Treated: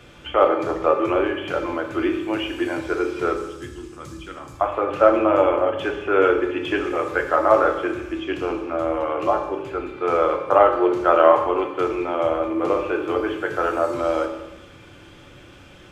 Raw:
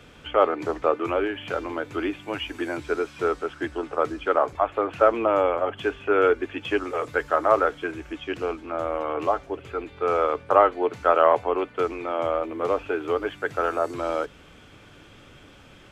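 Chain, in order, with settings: 3.36–4.61 EQ curve 190 Hz 0 dB, 570 Hz -26 dB, 7400 Hz +6 dB; reverb RT60 1.0 s, pre-delay 3 ms, DRR 2.5 dB; gain +1.5 dB

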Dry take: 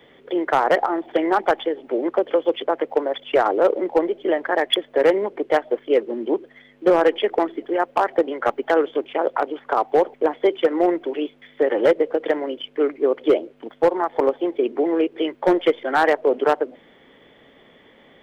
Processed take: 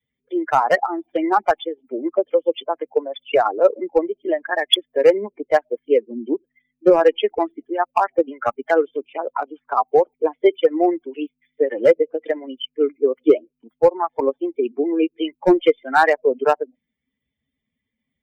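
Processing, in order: per-bin expansion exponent 2; gain +6.5 dB

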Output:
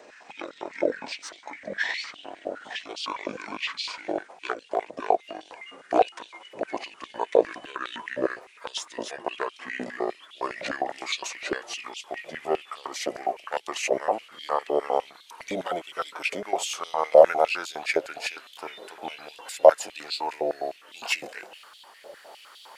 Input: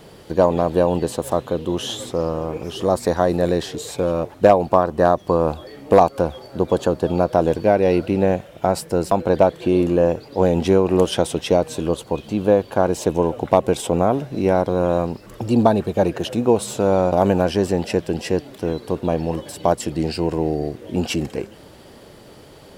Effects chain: gliding pitch shift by -10.5 st ending unshifted; stepped high-pass 9.8 Hz 580–3400 Hz; gain -2.5 dB

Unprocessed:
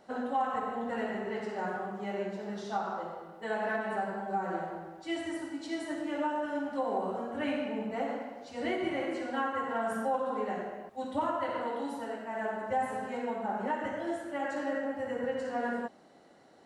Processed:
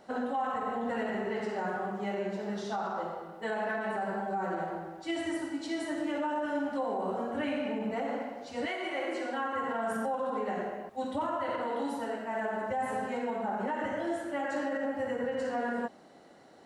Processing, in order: 8.65–9.54 HPF 790 Hz -> 200 Hz 12 dB/oct; limiter -27.5 dBFS, peak gain reduction 8 dB; gain +3 dB

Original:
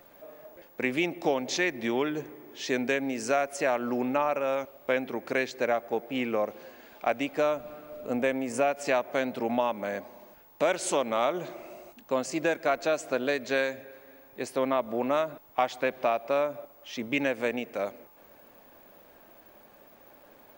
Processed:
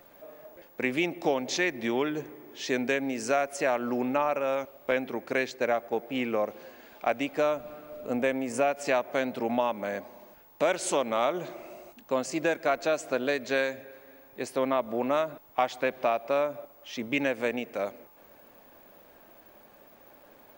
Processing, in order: 4.91–5.95 expander -36 dBFS

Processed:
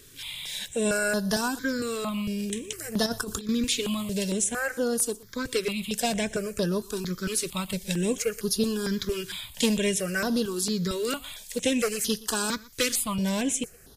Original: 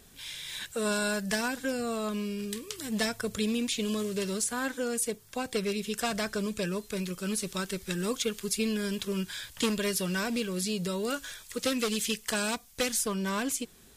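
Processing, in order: 3.06–3.49 negative-ratio compressor -34 dBFS, ratio -0.5; echo 0.12 s -21.5 dB; step phaser 4.4 Hz 200–7800 Hz; gain +6 dB

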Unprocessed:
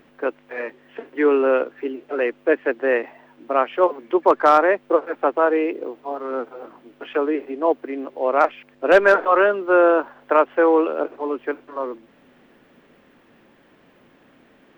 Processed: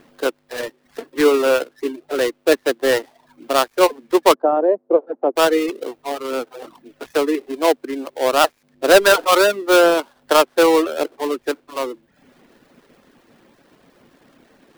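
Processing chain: switching dead time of 0.19 ms; 4.34–5.36 Butterworth band-pass 410 Hz, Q 0.79; reverb removal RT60 0.57 s; gain +3.5 dB

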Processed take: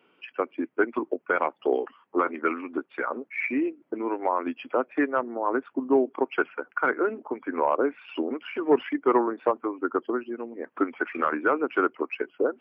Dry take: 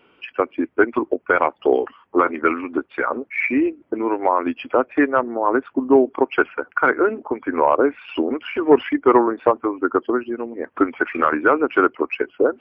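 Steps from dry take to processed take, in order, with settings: HPF 140 Hz 24 dB/oct; gain -7.5 dB

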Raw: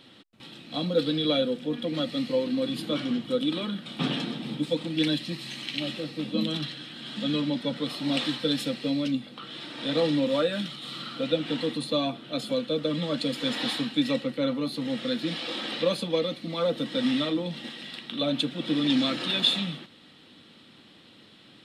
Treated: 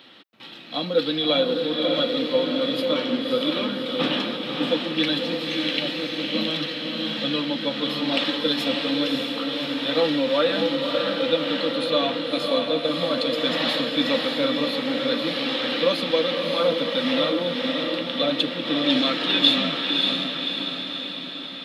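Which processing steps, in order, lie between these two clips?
HPF 590 Hz 6 dB/oct; bell 8500 Hz -14 dB 0.99 oct; diffused feedback echo 0.59 s, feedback 59%, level -3 dB; gain +7.5 dB

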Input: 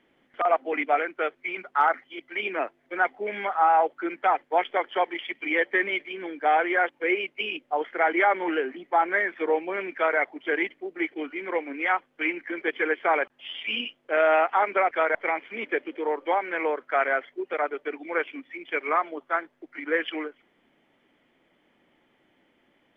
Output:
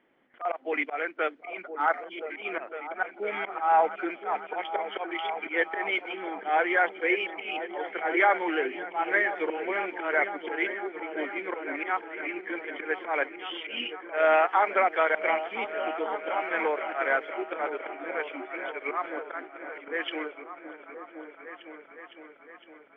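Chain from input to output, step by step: auto swell 0.149 s; low shelf 180 Hz -11.5 dB; repeats that get brighter 0.509 s, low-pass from 200 Hz, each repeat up 2 oct, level -6 dB; low-pass opened by the level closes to 2200 Hz, open at -21.5 dBFS

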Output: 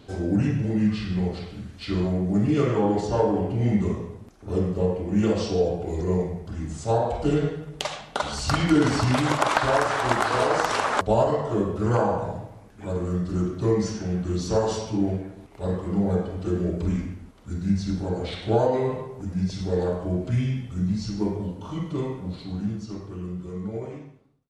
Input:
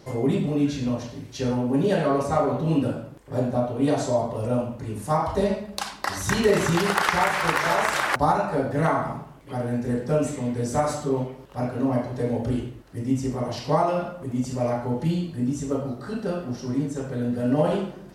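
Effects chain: ending faded out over 2.05 s; speed mistake 45 rpm record played at 33 rpm

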